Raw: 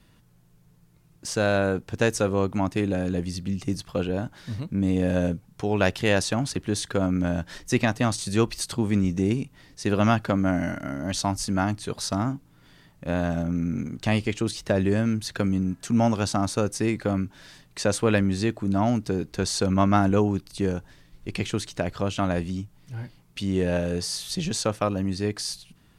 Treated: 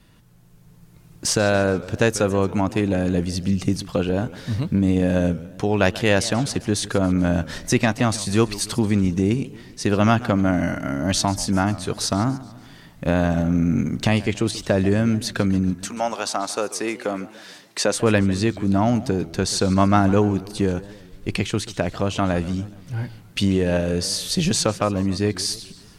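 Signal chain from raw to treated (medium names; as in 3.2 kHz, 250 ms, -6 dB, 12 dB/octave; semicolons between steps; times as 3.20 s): recorder AGC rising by 6.4 dB/s; 15.84–17.94 s: high-pass 620 Hz -> 250 Hz 12 dB/octave; modulated delay 142 ms, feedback 50%, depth 216 cents, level -17.5 dB; trim +3.5 dB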